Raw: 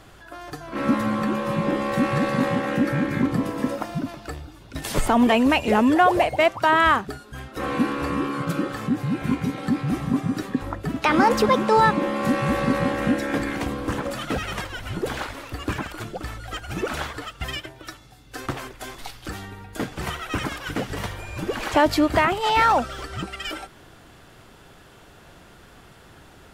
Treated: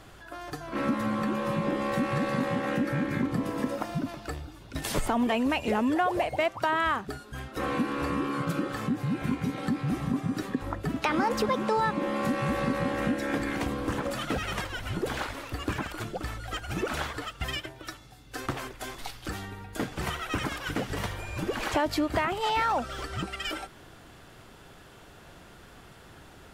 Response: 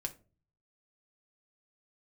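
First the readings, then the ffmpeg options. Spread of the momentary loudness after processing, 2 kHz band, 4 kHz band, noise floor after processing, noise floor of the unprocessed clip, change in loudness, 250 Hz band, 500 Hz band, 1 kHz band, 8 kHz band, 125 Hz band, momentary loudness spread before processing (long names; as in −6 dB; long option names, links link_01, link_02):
12 LU, −6.5 dB, −5.0 dB, −51 dBFS, −49 dBFS, −7.0 dB, −6.5 dB, −6.5 dB, −7.5 dB, −4.0 dB, −4.5 dB, 18 LU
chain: -af "acompressor=threshold=-24dB:ratio=2.5,volume=-2dB"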